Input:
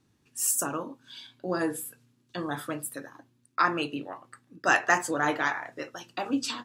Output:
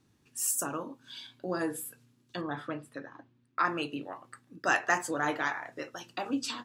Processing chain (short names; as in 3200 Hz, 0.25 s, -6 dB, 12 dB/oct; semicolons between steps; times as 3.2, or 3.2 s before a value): in parallel at -1.5 dB: compressor, threshold -40 dBFS, peak gain reduction 21 dB; 2.41–3.65 on the sum: LPF 3200 Hz 12 dB/oct; gain -5 dB